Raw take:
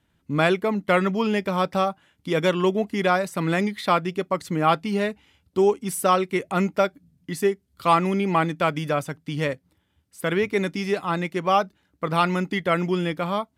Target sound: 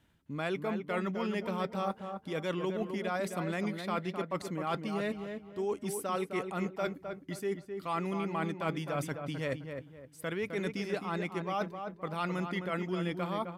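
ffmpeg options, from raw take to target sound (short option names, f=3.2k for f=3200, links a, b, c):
-filter_complex "[0:a]areverse,acompressor=threshold=-33dB:ratio=5,areverse,asplit=2[a][b];[b]adelay=260,lowpass=f=1.8k:p=1,volume=-6dB,asplit=2[c][d];[d]adelay=260,lowpass=f=1.8k:p=1,volume=0.34,asplit=2[e][f];[f]adelay=260,lowpass=f=1.8k:p=1,volume=0.34,asplit=2[g][h];[h]adelay=260,lowpass=f=1.8k:p=1,volume=0.34[i];[a][c][e][g][i]amix=inputs=5:normalize=0"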